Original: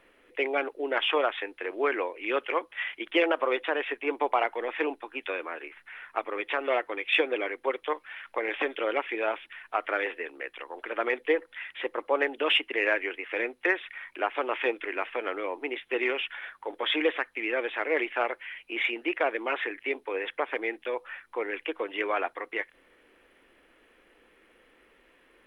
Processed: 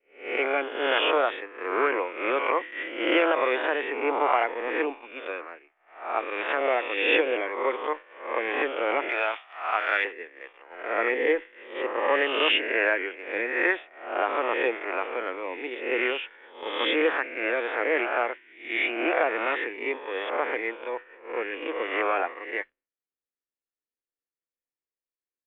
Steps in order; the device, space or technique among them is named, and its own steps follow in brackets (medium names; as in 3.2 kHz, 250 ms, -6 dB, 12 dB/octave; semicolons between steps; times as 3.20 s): reverse spectral sustain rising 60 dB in 1.12 s; hearing-loss simulation (low-pass 3 kHz 12 dB/octave; expander -49 dBFS); expander -26 dBFS; 9.09–10.05 s: tilt EQ +4.5 dB/octave